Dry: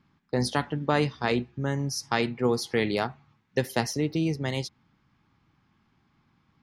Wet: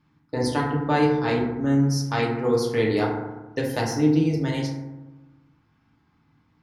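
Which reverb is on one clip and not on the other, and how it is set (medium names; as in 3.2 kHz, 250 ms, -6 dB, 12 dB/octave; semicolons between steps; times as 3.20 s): FDN reverb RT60 1.1 s, low-frequency decay 1.3×, high-frequency decay 0.35×, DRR -3 dB; trim -3 dB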